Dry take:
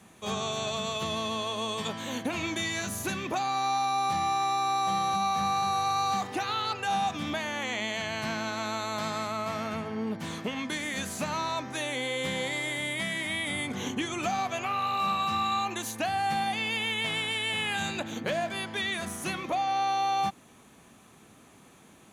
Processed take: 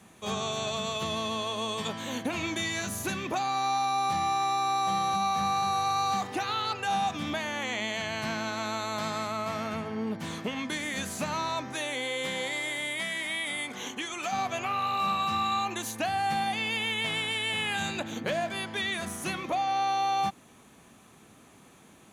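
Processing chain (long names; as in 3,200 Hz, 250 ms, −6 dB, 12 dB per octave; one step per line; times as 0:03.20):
0:11.74–0:14.31: high-pass filter 230 Hz → 820 Hz 6 dB per octave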